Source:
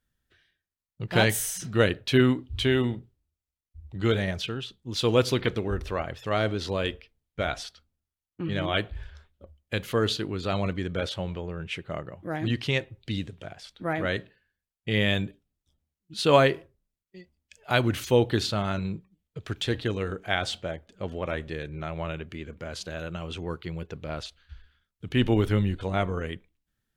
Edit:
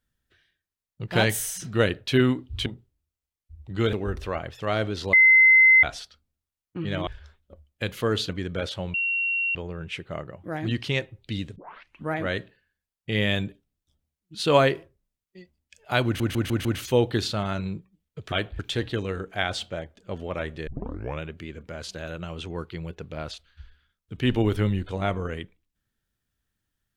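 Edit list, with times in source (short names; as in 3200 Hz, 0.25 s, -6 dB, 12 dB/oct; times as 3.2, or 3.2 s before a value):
2.66–2.91 cut
4.18–5.57 cut
6.77–7.47 bleep 2060 Hz -11.5 dBFS
8.71–8.98 move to 19.51
10.2–10.69 cut
11.34 add tone 2740 Hz -22.5 dBFS 0.61 s
13.35 tape start 0.56 s
17.84 stutter 0.15 s, 5 plays
21.59 tape start 0.53 s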